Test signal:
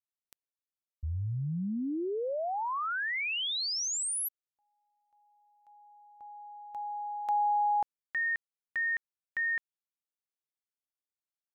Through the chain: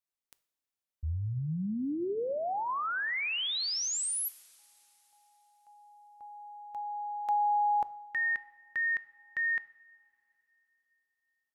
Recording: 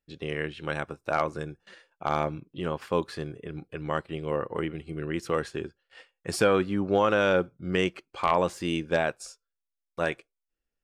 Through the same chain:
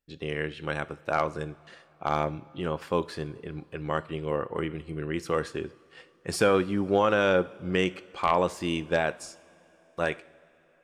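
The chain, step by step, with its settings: two-slope reverb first 0.56 s, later 3.7 s, from -16 dB, DRR 15 dB

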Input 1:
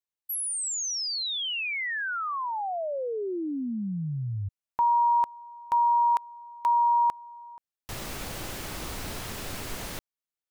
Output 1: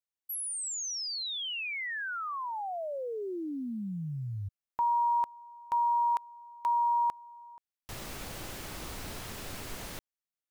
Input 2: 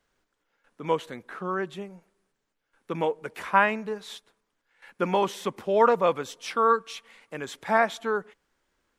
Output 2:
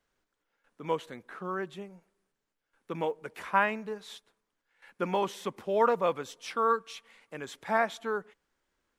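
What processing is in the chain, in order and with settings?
short-mantissa float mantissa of 6-bit; trim -5 dB

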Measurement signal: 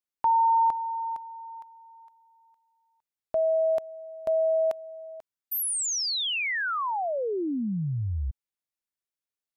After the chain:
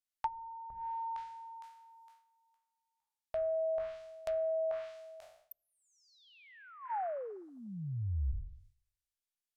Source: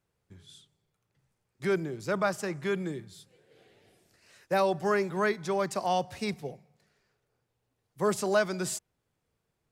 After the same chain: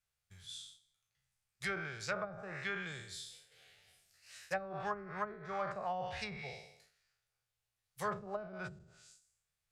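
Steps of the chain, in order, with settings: spectral sustain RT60 0.75 s; expander -56 dBFS, range -8 dB; amplifier tone stack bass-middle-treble 10-0-10; band-stop 980 Hz, Q 9.3; low-pass that closes with the level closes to 330 Hz, closed at -32 dBFS; trim +5 dB

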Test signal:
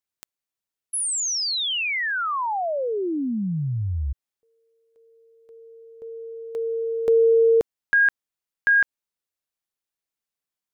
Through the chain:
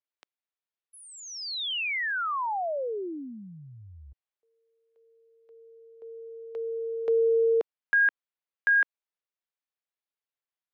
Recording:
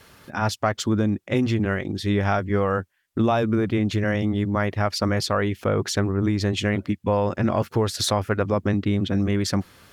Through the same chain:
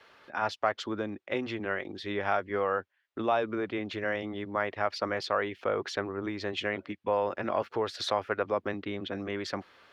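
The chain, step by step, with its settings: three-band isolator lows -18 dB, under 350 Hz, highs -22 dB, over 4.4 kHz; trim -4 dB

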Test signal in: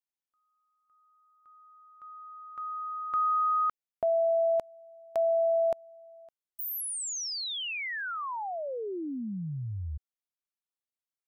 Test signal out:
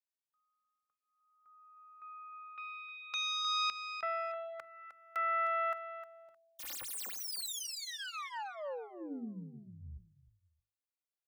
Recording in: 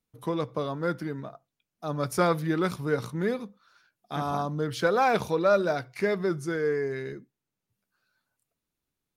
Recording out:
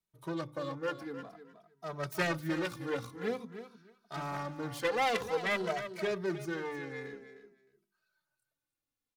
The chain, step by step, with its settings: self-modulated delay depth 0.36 ms; bass shelf 340 Hz -4 dB; hum notches 50/100/150/200/250/300/350/400 Hz; on a send: feedback delay 308 ms, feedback 19%, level -11.5 dB; on the sum: endless flanger 2.7 ms -0.5 Hz; trim -3 dB

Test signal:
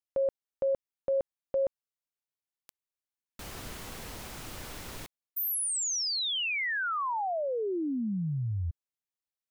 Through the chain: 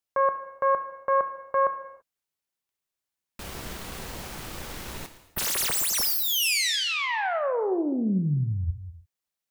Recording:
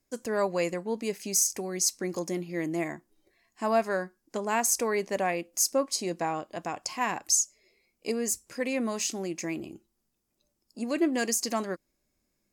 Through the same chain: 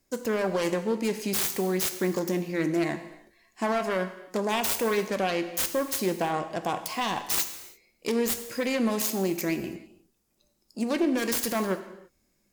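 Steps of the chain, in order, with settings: self-modulated delay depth 0.34 ms; peak limiter -23 dBFS; gated-style reverb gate 360 ms falling, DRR 8.5 dB; trim +5.5 dB

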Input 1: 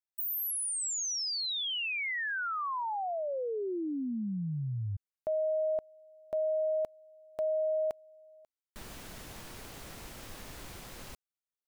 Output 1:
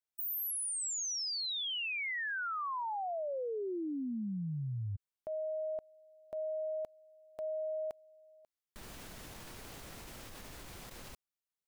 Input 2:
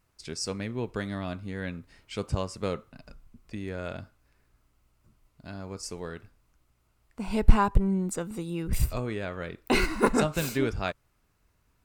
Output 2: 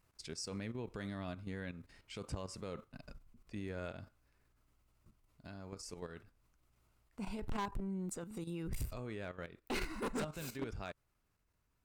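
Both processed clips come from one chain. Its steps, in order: level held to a coarse grid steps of 12 dB; overload inside the chain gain 26.5 dB; peak limiter -33 dBFS; trim -1 dB

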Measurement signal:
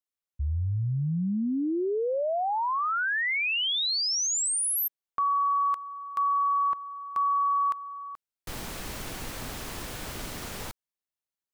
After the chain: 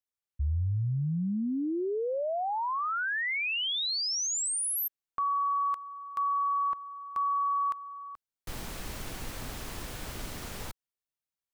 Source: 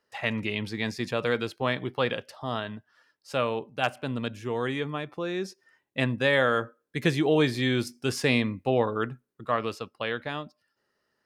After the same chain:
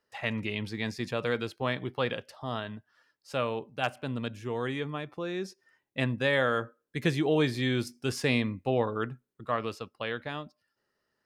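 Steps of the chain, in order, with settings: bass shelf 100 Hz +5 dB; trim -3.5 dB

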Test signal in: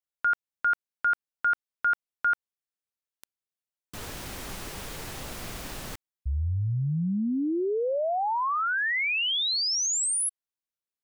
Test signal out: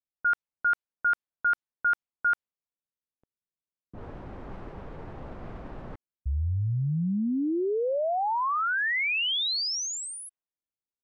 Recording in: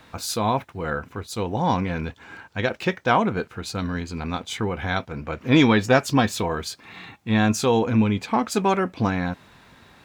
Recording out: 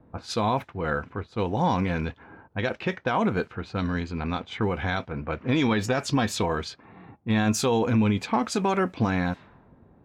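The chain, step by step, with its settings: peak limiter -14.5 dBFS; level-controlled noise filter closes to 430 Hz, open at -21.5 dBFS

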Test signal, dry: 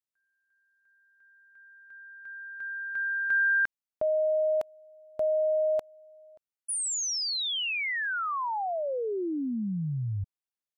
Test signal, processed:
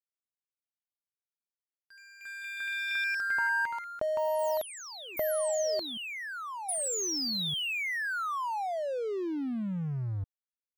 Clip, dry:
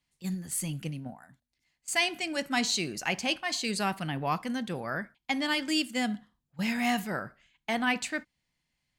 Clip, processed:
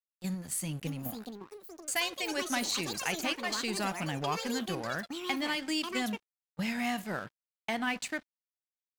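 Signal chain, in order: compression 2:1, threshold -36 dBFS; crossover distortion -50 dBFS; ever faster or slower copies 706 ms, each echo +7 st, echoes 3, each echo -6 dB; trim +3 dB

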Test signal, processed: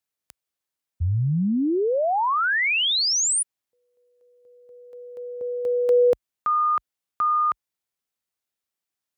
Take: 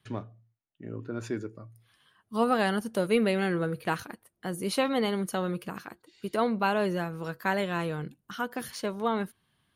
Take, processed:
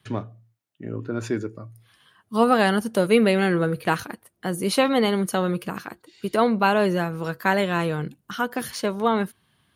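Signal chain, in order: high-pass 47 Hz 24 dB/octave; trim +7 dB

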